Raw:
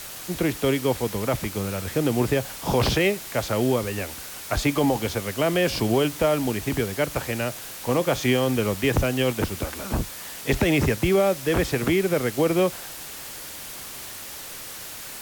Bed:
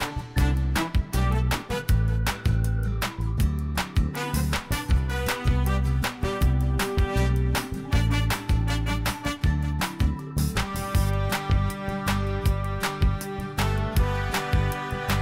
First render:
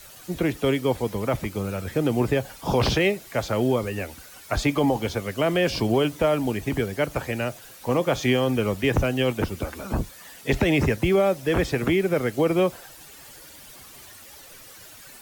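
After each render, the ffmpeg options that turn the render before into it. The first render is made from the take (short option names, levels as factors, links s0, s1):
-af "afftdn=nr=11:nf=-38"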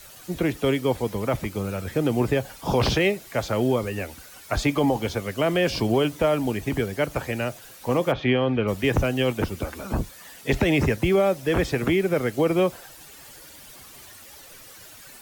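-filter_complex "[0:a]asplit=3[s0][s1][s2];[s0]afade=t=out:st=8.11:d=0.02[s3];[s1]lowpass=f=3400:w=0.5412,lowpass=f=3400:w=1.3066,afade=t=in:st=8.11:d=0.02,afade=t=out:st=8.67:d=0.02[s4];[s2]afade=t=in:st=8.67:d=0.02[s5];[s3][s4][s5]amix=inputs=3:normalize=0"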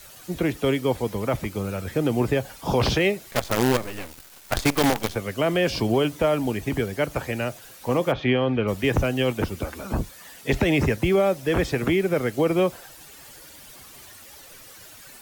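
-filter_complex "[0:a]asettb=1/sr,asplit=3[s0][s1][s2];[s0]atrim=end=3.314[s3];[s1]atrim=start=3.31:end=5.16,asetpts=PTS-STARTPTS,afade=t=in:d=0.004:c=qsin,afade=t=out:st=1.846:d=0.004:c=qsin,acrusher=bits=4:dc=4:mix=0:aa=0.000001[s4];[s2]atrim=start=5.156[s5];[s3][s4]acrossfade=d=0.004:c1=hsin:c2=qsin[s6];[s6][s5]acrossfade=d=0.004:c1=qsin:c2=hsin"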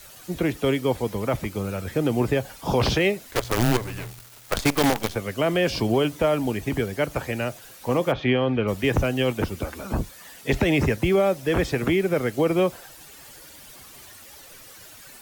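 -filter_complex "[0:a]asettb=1/sr,asplit=3[s0][s1][s2];[s0]atrim=end=3.254[s3];[s1]atrim=start=3.25:end=4.58,asetpts=PTS-STARTPTS,afade=t=in:d=0.004:c=qsin,afade=t=out:st=1.326:d=0.004:c=qsin,afreqshift=-120[s4];[s2]atrim=start=4.576[s5];[s3][s4]acrossfade=d=0.004:c1=hsin:c2=qsin[s6];[s6][s5]acrossfade=d=0.004:c1=qsin:c2=hsin"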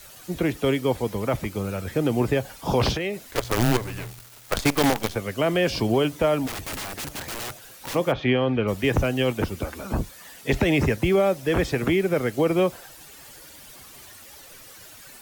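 -filter_complex "[0:a]asettb=1/sr,asplit=3[s0][s1][s2];[s0]atrim=end=2.914[s3];[s1]atrim=start=2.91:end=3.38,asetpts=PTS-STARTPTS,afade=t=in:d=0.004:c=qsin,afade=t=out:st=0.466:d=0.004:c=qsin,acompressor=threshold=0.0631:ratio=5:attack=3.2:release=140:knee=1:detection=peak[s4];[s2]atrim=start=3.376[s5];[s3][s4]acrossfade=d=0.004:c1=hsin:c2=qsin[s6];[s6][s5]acrossfade=d=0.004:c1=qsin:c2=hsin,asplit=3[s7][s8][s9];[s7]afade=t=out:st=6.46:d=0.02[s10];[s8]aeval=exprs='(mod(22.4*val(0)+1,2)-1)/22.4':c=same,afade=t=in:st=6.46:d=0.02,afade=t=out:st=7.94:d=0.02[s11];[s9]afade=t=in:st=7.94:d=0.02[s12];[s10][s11][s12]amix=inputs=3:normalize=0"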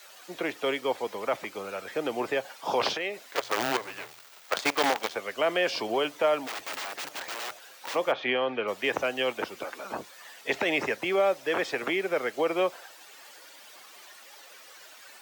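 -af "highpass=560,equalizer=f=12000:t=o:w=1.2:g=-11.5"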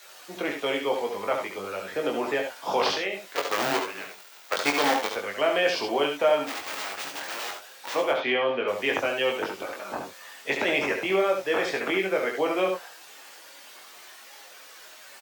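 -filter_complex "[0:a]asplit=2[s0][s1];[s1]adelay=21,volume=0.631[s2];[s0][s2]amix=inputs=2:normalize=0,aecho=1:1:69|80:0.447|0.282"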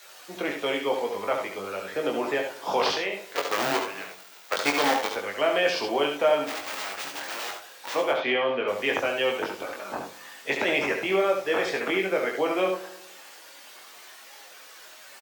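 -filter_complex "[0:a]asplit=2[s0][s1];[s1]adelay=107,lowpass=f=2000:p=1,volume=0.158,asplit=2[s2][s3];[s3]adelay=107,lowpass=f=2000:p=1,volume=0.54,asplit=2[s4][s5];[s5]adelay=107,lowpass=f=2000:p=1,volume=0.54,asplit=2[s6][s7];[s7]adelay=107,lowpass=f=2000:p=1,volume=0.54,asplit=2[s8][s9];[s9]adelay=107,lowpass=f=2000:p=1,volume=0.54[s10];[s0][s2][s4][s6][s8][s10]amix=inputs=6:normalize=0"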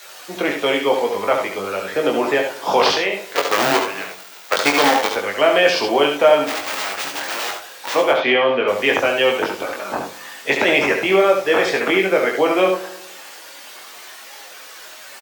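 -af "volume=2.82,alimiter=limit=0.794:level=0:latency=1"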